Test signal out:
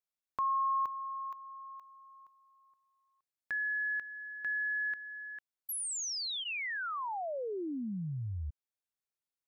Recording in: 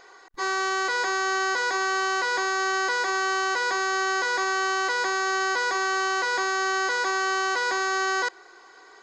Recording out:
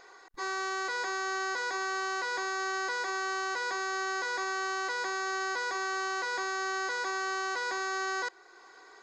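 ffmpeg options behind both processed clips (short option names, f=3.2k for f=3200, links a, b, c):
-filter_complex "[0:a]bandreject=f=3k:w=21,asplit=2[a][b];[b]acompressor=threshold=-44dB:ratio=6,volume=-2dB[c];[a][c]amix=inputs=2:normalize=0,volume=-8.5dB"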